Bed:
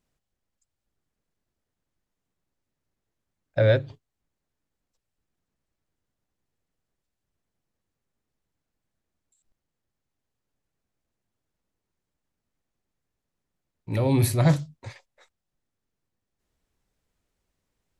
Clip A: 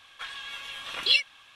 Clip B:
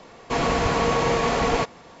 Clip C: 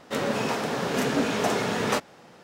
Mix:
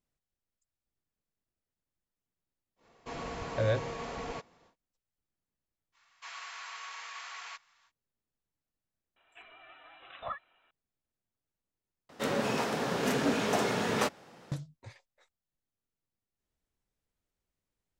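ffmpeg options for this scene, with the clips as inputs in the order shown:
-filter_complex "[2:a]asplit=2[a][b];[0:a]volume=-9.5dB[c];[b]highpass=f=1.2k:w=0.5412,highpass=f=1.2k:w=1.3066[d];[1:a]lowpass=f=3.4k:t=q:w=0.5098,lowpass=f=3.4k:t=q:w=0.6013,lowpass=f=3.4k:t=q:w=0.9,lowpass=f=3.4k:t=q:w=2.563,afreqshift=-4000[e];[c]asplit=2[f][g];[f]atrim=end=12.094[h];[3:a]atrim=end=2.43,asetpts=PTS-STARTPTS,volume=-4dB[i];[g]atrim=start=14.516[j];[a]atrim=end=2,asetpts=PTS-STARTPTS,volume=-17.5dB,afade=t=in:d=0.1,afade=t=out:st=1.9:d=0.1,adelay=2760[k];[d]atrim=end=2,asetpts=PTS-STARTPTS,volume=-15dB,afade=t=in:d=0.05,afade=t=out:st=1.95:d=0.05,adelay=5920[l];[e]atrim=end=1.55,asetpts=PTS-STARTPTS,volume=-14.5dB,afade=t=in:d=0.004:c=hsin,afade=t=out:st=1.546:d=0.004:c=hsin,adelay=9160[m];[h][i]acrossfade=d=0.004:c1=hsin:c2=hsin[n];[n][j]acrossfade=d=0.004:c1=hsin:c2=hsin[o];[o][k][l][m]amix=inputs=4:normalize=0"

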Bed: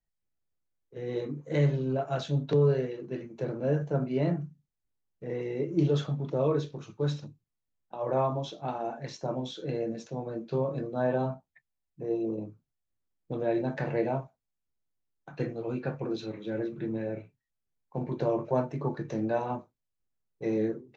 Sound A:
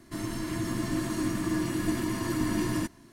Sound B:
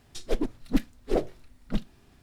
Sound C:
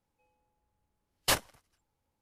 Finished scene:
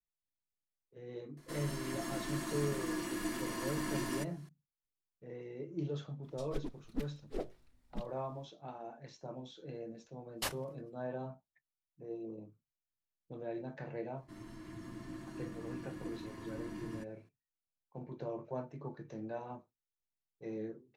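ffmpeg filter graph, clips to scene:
-filter_complex "[1:a]asplit=2[a][b];[0:a]volume=-13dB[c];[a]equalizer=f=92:w=0.56:g=-15[d];[b]aemphasis=mode=reproduction:type=cd[e];[d]atrim=end=3.12,asetpts=PTS-STARTPTS,volume=-5dB,afade=t=in:d=0.004:c=hsin,afade=t=out:st=3.116:d=0.004:c=hsin,adelay=1370[f];[2:a]atrim=end=2.22,asetpts=PTS-STARTPTS,volume=-14dB,afade=t=in:d=0.004:c=hsin,afade=t=out:st=2.216:d=0.004:c=hsin,adelay=6230[g];[3:a]atrim=end=2.21,asetpts=PTS-STARTPTS,volume=-10.5dB,afade=t=in:d=0.004:c=hsin,afade=t=out:st=2.206:d=0.004:c=hsin,adelay=403074S[h];[e]atrim=end=3.12,asetpts=PTS-STARTPTS,volume=-16.5dB,afade=t=in:d=0.004:c=hsin,afade=t=out:st=3.116:d=0.004:c=hsin,adelay=14170[i];[c][f][g][h][i]amix=inputs=5:normalize=0"

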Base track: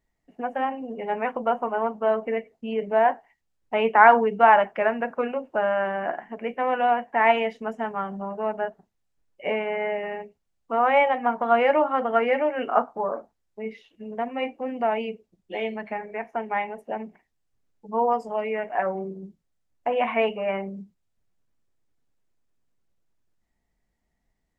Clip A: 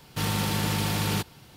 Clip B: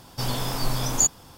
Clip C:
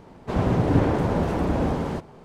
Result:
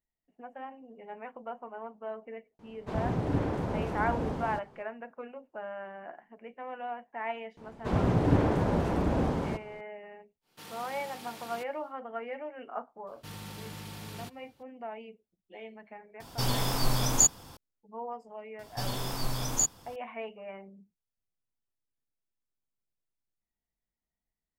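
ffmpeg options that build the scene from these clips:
-filter_complex "[3:a]asplit=2[a][b];[1:a]asplit=2[c][d];[2:a]asplit=2[e][f];[0:a]volume=-16.5dB[g];[c]highpass=270[h];[a]atrim=end=2.24,asetpts=PTS-STARTPTS,volume=-9.5dB,afade=t=in:d=0.004:c=hsin,afade=t=out:st=2.236:d=0.004:c=hsin,adelay=2590[i];[b]atrim=end=2.24,asetpts=PTS-STARTPTS,volume=-4.5dB,afade=t=in:d=0.004:c=hsin,afade=t=out:st=2.236:d=0.004:c=hsin,adelay=7570[j];[h]atrim=end=1.56,asetpts=PTS-STARTPTS,volume=-17dB,afade=t=in:d=0.1,afade=t=out:st=1.46:d=0.1,adelay=10410[k];[d]atrim=end=1.56,asetpts=PTS-STARTPTS,volume=-16.5dB,afade=t=in:d=0.004:c=hsin,afade=t=out:st=1.556:d=0.004:c=hsin,adelay=13070[l];[e]atrim=end=1.37,asetpts=PTS-STARTPTS,volume=-1.5dB,afade=t=in:d=0.004:c=hsin,afade=t=out:st=1.366:d=0.004:c=hsin,adelay=714420S[m];[f]atrim=end=1.37,asetpts=PTS-STARTPTS,volume=-6.5dB,afade=t=in:d=0.004:c=hsin,afade=t=out:st=1.366:d=0.004:c=hsin,adelay=18590[n];[g][i][j][k][l][m][n]amix=inputs=7:normalize=0"

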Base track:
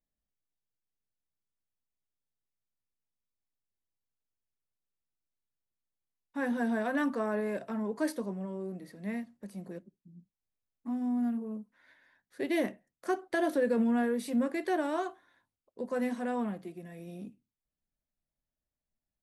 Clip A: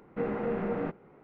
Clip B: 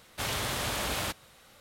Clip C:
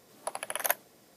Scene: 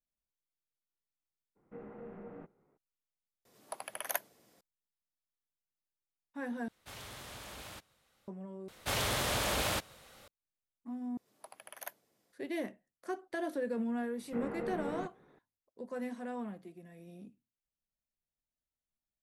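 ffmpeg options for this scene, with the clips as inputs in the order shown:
-filter_complex "[1:a]asplit=2[a][b];[3:a]asplit=2[c][d];[2:a]asplit=2[e][f];[0:a]volume=-7.5dB[g];[a]highshelf=f=2.7k:g=-10[h];[f]equalizer=f=550:t=o:w=0.77:g=3[i];[g]asplit=5[j][k][l][m][n];[j]atrim=end=3.454[o];[c]atrim=end=1.16,asetpts=PTS-STARTPTS,volume=-7dB[p];[k]atrim=start=4.606:end=6.684[q];[e]atrim=end=1.6,asetpts=PTS-STARTPTS,volume=-16dB[r];[l]atrim=start=8.276:end=8.684[s];[i]atrim=end=1.6,asetpts=PTS-STARTPTS,volume=-1dB[t];[m]atrim=start=10.276:end=11.174[u];[d]atrim=end=1.16,asetpts=PTS-STARTPTS,volume=-16.5dB[v];[n]atrim=start=12.326[w];[h]atrim=end=1.23,asetpts=PTS-STARTPTS,volume=-16.5dB,afade=t=in:d=0.02,afade=t=out:st=1.21:d=0.02,adelay=1550[x];[b]atrim=end=1.23,asetpts=PTS-STARTPTS,volume=-8dB,afade=t=in:d=0.004:c=hsin,afade=t=out:st=1.226:d=0.004:c=hsin,adelay=14160[y];[o][p]acrossfade=d=0.004:c1=hsin:c2=hsin[z];[z][q]acrossfade=d=0.004:c1=hsin:c2=hsin[aa];[aa][r]acrossfade=d=0.004:c1=hsin:c2=hsin[ab];[ab][s]acrossfade=d=0.004:c1=hsin:c2=hsin[ac];[ac][t]acrossfade=d=0.004:c1=hsin:c2=hsin[ad];[ad][u]acrossfade=d=0.004:c1=hsin:c2=hsin[ae];[ae][v]acrossfade=d=0.004:c1=hsin:c2=hsin[af];[af][w]acrossfade=d=0.004:c1=hsin:c2=hsin[ag];[ag][x][y]amix=inputs=3:normalize=0"

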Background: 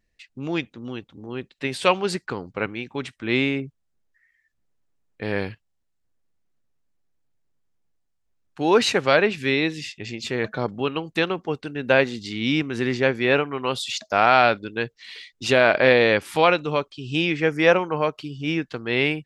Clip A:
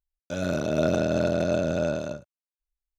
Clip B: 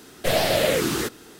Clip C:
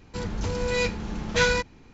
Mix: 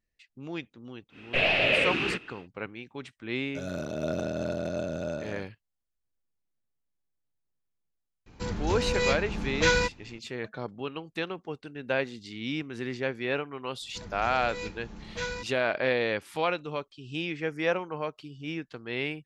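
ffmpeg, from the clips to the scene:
-filter_complex "[3:a]asplit=2[a][b];[0:a]volume=-10.5dB[c];[2:a]lowpass=f=2.6k:t=q:w=8.3,atrim=end=1.39,asetpts=PTS-STARTPTS,volume=-7.5dB,afade=t=in:d=0.1,afade=t=out:st=1.29:d=0.1,adelay=1090[d];[1:a]atrim=end=2.98,asetpts=PTS-STARTPTS,volume=-7.5dB,afade=t=in:d=0.004:c=hsin,afade=t=out:st=2.976:d=0.004:c=hsin,adelay=143325S[e];[a]atrim=end=1.93,asetpts=PTS-STARTPTS,volume=-1.5dB,afade=t=in:d=0.004:c=hsin,afade=t=out:st=1.926:d=0.004:c=hsin,adelay=364266S[f];[b]atrim=end=1.93,asetpts=PTS-STARTPTS,volume=-12.5dB,afade=t=in:d=0.004:c=hsin,afade=t=out:st=1.926:d=0.004:c=hsin,adelay=13810[g];[c][d][e][f][g]amix=inputs=5:normalize=0"

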